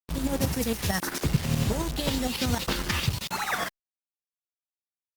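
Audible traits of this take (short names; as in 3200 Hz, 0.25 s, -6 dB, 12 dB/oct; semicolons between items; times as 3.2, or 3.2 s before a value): tremolo saw up 11 Hz, depth 65%; a quantiser's noise floor 6-bit, dither none; Opus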